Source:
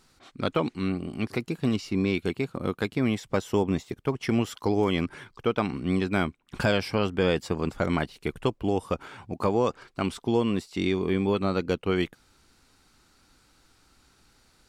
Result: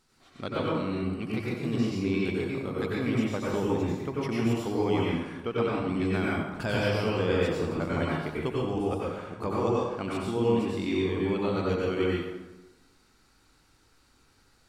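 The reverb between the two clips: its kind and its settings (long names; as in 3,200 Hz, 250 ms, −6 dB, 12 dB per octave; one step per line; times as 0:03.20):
dense smooth reverb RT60 1.1 s, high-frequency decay 0.65×, pre-delay 80 ms, DRR −5.5 dB
level −8 dB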